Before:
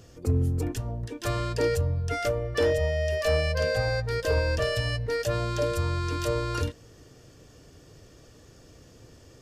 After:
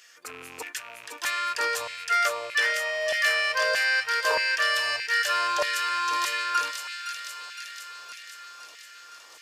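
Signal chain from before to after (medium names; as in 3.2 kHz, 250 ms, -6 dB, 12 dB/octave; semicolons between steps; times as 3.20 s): rattle on loud lows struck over -28 dBFS, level -37 dBFS; feedback echo behind a high-pass 514 ms, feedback 67%, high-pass 2.4 kHz, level -4 dB; LFO high-pass saw down 1.6 Hz 880–2000 Hz; trim +4.5 dB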